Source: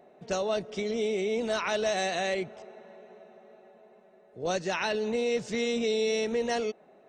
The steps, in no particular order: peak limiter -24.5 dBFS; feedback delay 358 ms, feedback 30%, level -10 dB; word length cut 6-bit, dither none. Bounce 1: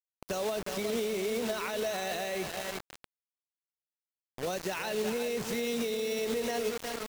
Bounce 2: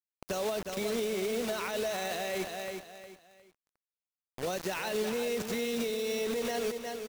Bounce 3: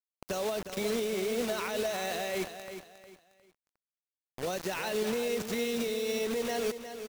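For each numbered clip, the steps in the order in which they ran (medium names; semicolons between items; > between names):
feedback delay > word length cut > peak limiter; word length cut > feedback delay > peak limiter; word length cut > peak limiter > feedback delay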